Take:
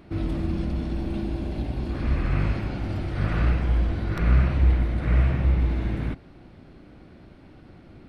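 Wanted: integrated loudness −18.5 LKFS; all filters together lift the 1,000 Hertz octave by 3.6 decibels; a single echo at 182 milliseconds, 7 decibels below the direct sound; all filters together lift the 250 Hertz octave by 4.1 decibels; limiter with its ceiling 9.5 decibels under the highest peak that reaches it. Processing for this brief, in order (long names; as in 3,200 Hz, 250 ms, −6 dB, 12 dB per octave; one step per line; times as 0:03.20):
parametric band 250 Hz +5.5 dB
parametric band 1,000 Hz +4.5 dB
brickwall limiter −15.5 dBFS
single-tap delay 182 ms −7 dB
level +7 dB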